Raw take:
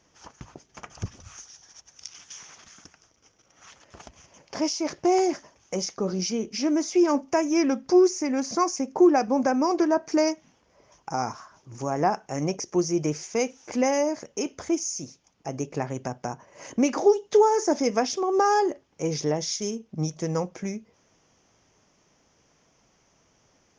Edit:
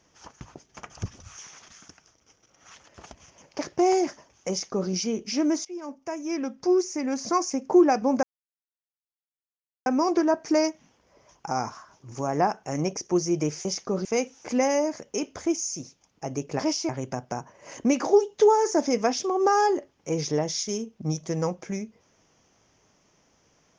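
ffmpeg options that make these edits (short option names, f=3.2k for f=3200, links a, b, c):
-filter_complex "[0:a]asplit=9[a][b][c][d][e][f][g][h][i];[a]atrim=end=1.392[j];[b]atrim=start=2.348:end=4.552[k];[c]atrim=start=4.848:end=6.91,asetpts=PTS-STARTPTS,afade=t=out:st=2.058:d=0.004:c=hsin:silence=0.0944061[l];[d]atrim=start=6.91:end=9.49,asetpts=PTS-STARTPTS,afade=t=in:d=1.84:silence=0.0944061,afade=t=out:st=2.576:d=0.004:c=hsin,apad=pad_dur=1.63[m];[e]atrim=start=9.49:end=13.282,asetpts=PTS-STARTPTS,afade=t=in:d=0.004:c=hsin[n];[f]atrim=start=5.758:end=6.162[o];[g]atrim=start=13.278:end=15.822[p];[h]atrim=start=4.548:end=4.852[q];[i]atrim=start=15.818[r];[j][k]acrossfade=d=0.004:c1=hsin:c2=hsin[s];[l][m][n]concat=n=3:v=0:a=1[t];[s][t]acrossfade=d=0.004:c1=hsin:c2=hsin[u];[u][o]acrossfade=d=0.004:c1=hsin:c2=hsin[v];[v][p]acrossfade=d=0.004:c1=hsin:c2=hsin[w];[w][q]acrossfade=d=0.004:c1=hsin:c2=hsin[x];[x][r]acrossfade=d=0.004:c1=hsin:c2=hsin"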